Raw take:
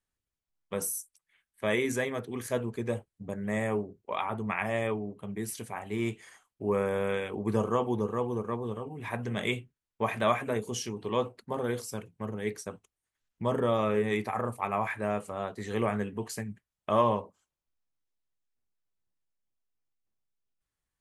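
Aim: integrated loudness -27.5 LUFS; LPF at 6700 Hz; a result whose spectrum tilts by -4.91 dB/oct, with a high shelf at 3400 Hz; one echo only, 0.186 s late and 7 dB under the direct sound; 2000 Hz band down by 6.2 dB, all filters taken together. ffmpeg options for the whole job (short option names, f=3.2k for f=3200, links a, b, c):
-af "lowpass=6.7k,equalizer=f=2k:t=o:g=-6.5,highshelf=f=3.4k:g=-3.5,aecho=1:1:186:0.447,volume=4.5dB"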